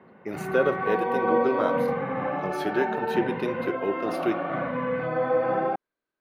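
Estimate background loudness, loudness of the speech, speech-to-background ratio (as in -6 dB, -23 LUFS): -28.0 LUFS, -29.5 LUFS, -1.5 dB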